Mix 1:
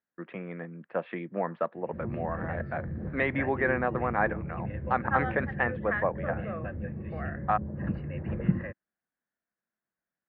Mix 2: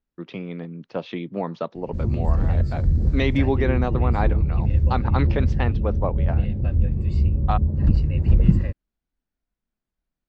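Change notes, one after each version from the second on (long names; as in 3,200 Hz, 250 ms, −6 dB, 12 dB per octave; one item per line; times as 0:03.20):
second voice: muted
master: remove loudspeaker in its box 240–2,100 Hz, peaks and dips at 270 Hz −8 dB, 410 Hz −6 dB, 890 Hz −3 dB, 1,700 Hz +8 dB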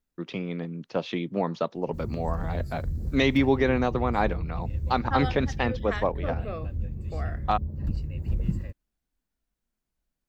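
second voice: unmuted
background −11.5 dB
master: remove high-frequency loss of the air 130 metres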